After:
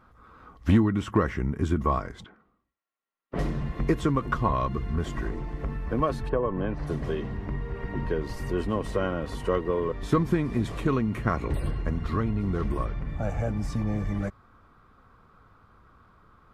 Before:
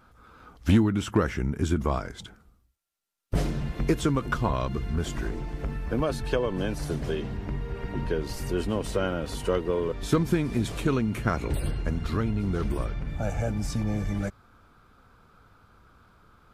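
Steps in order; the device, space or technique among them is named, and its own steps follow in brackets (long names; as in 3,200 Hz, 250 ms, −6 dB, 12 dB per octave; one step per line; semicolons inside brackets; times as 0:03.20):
0:06.28–0:06.86: low-pass filter 1,200 Hz → 3,100 Hz 12 dB per octave
inside a helmet (high-shelf EQ 3,200 Hz −10 dB; hollow resonant body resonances 1,100/1,900 Hz, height 11 dB, ringing for 45 ms)
0:02.24–0:03.39: three-way crossover with the lows and the highs turned down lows −19 dB, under 180 Hz, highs −22 dB, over 3,700 Hz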